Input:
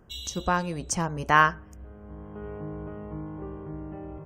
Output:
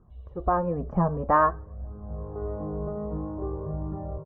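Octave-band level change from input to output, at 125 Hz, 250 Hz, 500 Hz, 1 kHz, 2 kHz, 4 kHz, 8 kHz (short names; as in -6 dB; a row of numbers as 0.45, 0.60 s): +3.5 dB, +2.5 dB, +5.5 dB, 0.0 dB, -10.5 dB, under -30 dB, under -40 dB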